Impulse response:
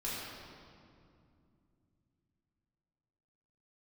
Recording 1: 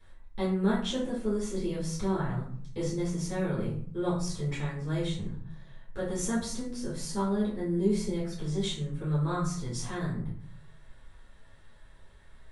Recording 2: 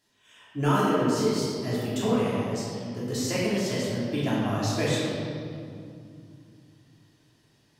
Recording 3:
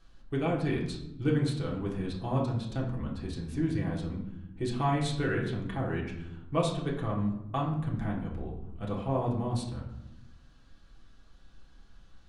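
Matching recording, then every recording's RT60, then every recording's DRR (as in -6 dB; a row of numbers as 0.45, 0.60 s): 2; 0.55, 2.5, 0.90 s; -10.0, -9.0, -4.0 dB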